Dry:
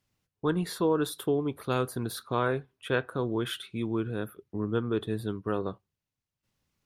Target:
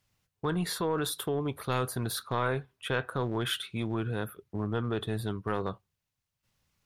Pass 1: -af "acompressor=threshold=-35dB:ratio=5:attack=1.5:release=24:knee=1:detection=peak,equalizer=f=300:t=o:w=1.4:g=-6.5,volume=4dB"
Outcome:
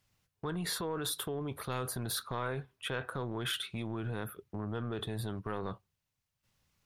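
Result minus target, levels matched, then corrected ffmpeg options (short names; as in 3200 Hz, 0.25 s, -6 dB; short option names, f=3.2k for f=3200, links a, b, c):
compressor: peak gain reduction +7 dB
-af "acompressor=threshold=-26.5dB:ratio=5:attack=1.5:release=24:knee=1:detection=peak,equalizer=f=300:t=o:w=1.4:g=-6.5,volume=4dB"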